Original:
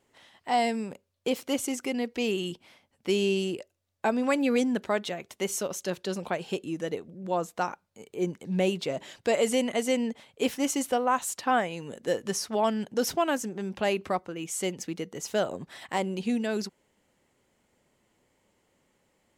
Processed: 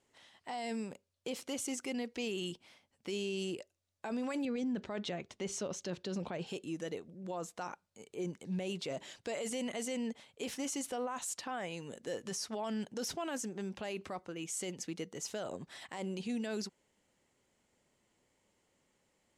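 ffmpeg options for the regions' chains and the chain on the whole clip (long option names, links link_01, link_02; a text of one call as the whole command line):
ffmpeg -i in.wav -filter_complex "[0:a]asettb=1/sr,asplit=3[link_01][link_02][link_03];[link_01]atrim=end=4.454[link_04];[link_02]atrim=start=4.45:end=6.47,asetpts=PTS-STARTPTS,afade=type=in:duration=0.004:curve=qsin,afade=type=out:start_time=2.016:duration=0.004:curve=qsin,lowpass=5500,lowshelf=frequency=380:gain=8[link_05];[link_03]atrim=start=6.466[link_06];[link_04][link_05]acrossfade=duration=0.004:curve1=hsin:curve2=qsin[link_07];[link_07][link_06]acrossfade=duration=0.004:curve1=qsin:curve2=hsin,lowpass=8400,highshelf=frequency=5000:gain=8.5,alimiter=limit=-23.5dB:level=0:latency=1:release=16,volume=-6.5dB" out.wav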